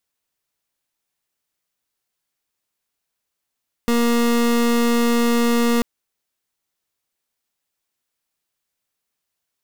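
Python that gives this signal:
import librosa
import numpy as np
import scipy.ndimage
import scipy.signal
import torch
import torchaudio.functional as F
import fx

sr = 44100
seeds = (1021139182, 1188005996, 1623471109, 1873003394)

y = fx.pulse(sr, length_s=1.94, hz=236.0, level_db=-17.0, duty_pct=30)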